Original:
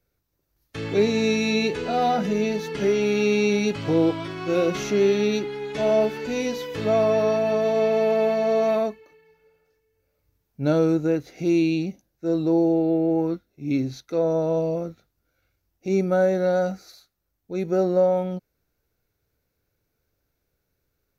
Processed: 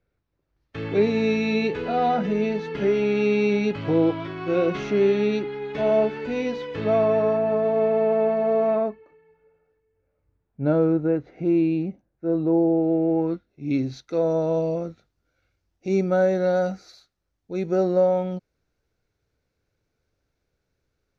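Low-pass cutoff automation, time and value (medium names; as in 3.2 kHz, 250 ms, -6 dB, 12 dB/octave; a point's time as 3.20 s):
6.91 s 2.9 kHz
7.42 s 1.6 kHz
12.79 s 1.6 kHz
13.18 s 3 kHz
14.05 s 6.3 kHz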